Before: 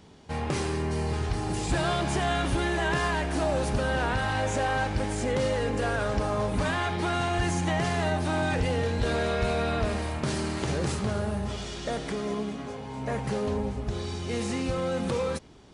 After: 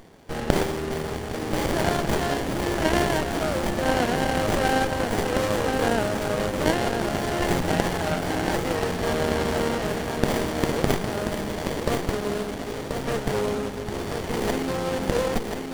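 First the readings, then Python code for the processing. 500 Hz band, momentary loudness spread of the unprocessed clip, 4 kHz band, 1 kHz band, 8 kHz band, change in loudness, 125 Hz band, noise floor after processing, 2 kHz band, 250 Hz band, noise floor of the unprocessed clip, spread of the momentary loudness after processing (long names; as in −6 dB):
+4.5 dB, 6 LU, +4.0 dB, +3.0 dB, +4.0 dB, +3.0 dB, −0.5 dB, −32 dBFS, +2.5 dB, +4.0 dB, −38 dBFS, 6 LU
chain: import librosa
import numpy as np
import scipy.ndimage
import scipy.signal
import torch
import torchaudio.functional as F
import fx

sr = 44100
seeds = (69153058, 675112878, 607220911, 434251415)

p1 = fx.riaa(x, sr, side='recording')
p2 = fx.rider(p1, sr, range_db=5, speed_s=2.0)
p3 = p1 + (p2 * librosa.db_to_amplitude(-3.0))
p4 = fx.cheby_harmonics(p3, sr, harmonics=(3,), levels_db=(-17,), full_scale_db=-7.5)
p5 = fx.echo_feedback(p4, sr, ms=1033, feedback_pct=49, wet_db=-5.5)
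p6 = fx.running_max(p5, sr, window=33)
y = p6 * librosa.db_to_amplitude(5.5)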